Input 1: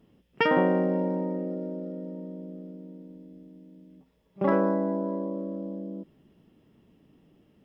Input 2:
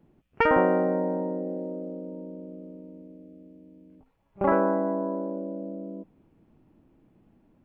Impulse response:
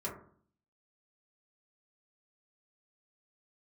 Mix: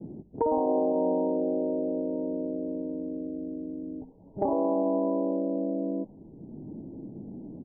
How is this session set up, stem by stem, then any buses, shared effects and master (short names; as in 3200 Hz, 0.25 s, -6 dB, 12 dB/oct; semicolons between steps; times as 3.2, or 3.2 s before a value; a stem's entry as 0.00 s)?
-8.5 dB, 0.00 s, no send, dry
+2.5 dB, 7.3 ms, send -23.5 dB, limiter -19.5 dBFS, peak gain reduction 11 dB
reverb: on, RT60 0.50 s, pre-delay 3 ms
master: low-pass opened by the level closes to 390 Hz, open at -23.5 dBFS; steep low-pass 970 Hz 72 dB/oct; three-band squash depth 70%